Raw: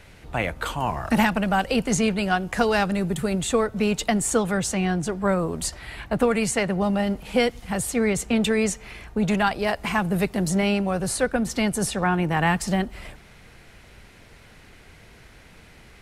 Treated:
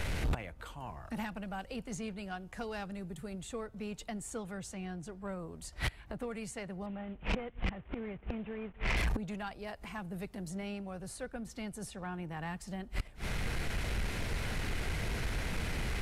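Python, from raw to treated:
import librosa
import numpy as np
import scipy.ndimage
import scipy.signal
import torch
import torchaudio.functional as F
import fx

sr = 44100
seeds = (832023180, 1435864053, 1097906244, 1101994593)

y = fx.cvsd(x, sr, bps=16000, at=(6.86, 8.97))
y = fx.low_shelf(y, sr, hz=99.0, db=7.5)
y = fx.gate_flip(y, sr, shuts_db=-25.0, range_db=-31)
y = 10.0 ** (-39.0 / 20.0) * np.tanh(y / 10.0 ** (-39.0 / 20.0))
y = F.gain(torch.from_numpy(y), 12.0).numpy()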